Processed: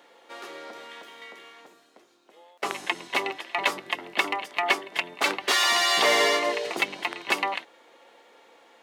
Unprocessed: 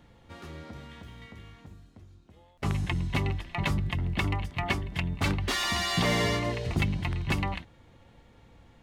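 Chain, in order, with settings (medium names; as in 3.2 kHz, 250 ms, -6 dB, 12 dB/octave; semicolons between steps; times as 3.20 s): high-pass 390 Hz 24 dB/octave; trim +7.5 dB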